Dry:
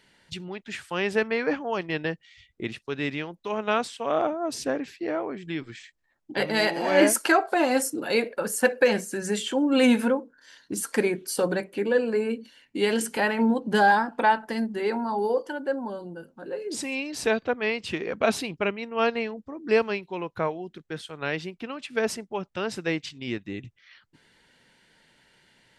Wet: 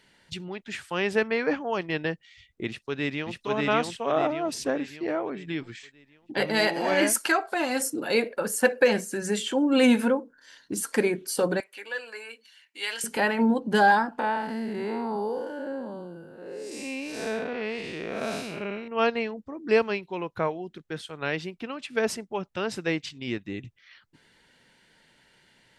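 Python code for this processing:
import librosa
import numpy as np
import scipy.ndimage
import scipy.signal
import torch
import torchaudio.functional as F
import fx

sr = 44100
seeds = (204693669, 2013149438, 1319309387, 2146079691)

y = fx.echo_throw(x, sr, start_s=2.67, length_s=0.75, ms=590, feedback_pct=45, wet_db=0.0)
y = fx.peak_eq(y, sr, hz=480.0, db=-6.5, octaves=2.3, at=(6.94, 7.81))
y = fx.highpass(y, sr, hz=1300.0, slope=12, at=(11.6, 13.04))
y = fx.spec_blur(y, sr, span_ms=228.0, at=(14.19, 18.88))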